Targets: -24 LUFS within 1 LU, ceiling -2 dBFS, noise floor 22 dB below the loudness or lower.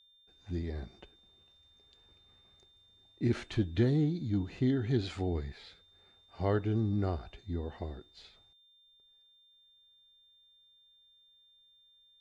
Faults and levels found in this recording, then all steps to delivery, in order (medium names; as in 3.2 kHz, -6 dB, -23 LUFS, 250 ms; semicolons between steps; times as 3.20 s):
steady tone 3.6 kHz; tone level -62 dBFS; loudness -33.5 LUFS; peak level -17.0 dBFS; loudness target -24.0 LUFS
-> band-stop 3.6 kHz, Q 30; trim +9.5 dB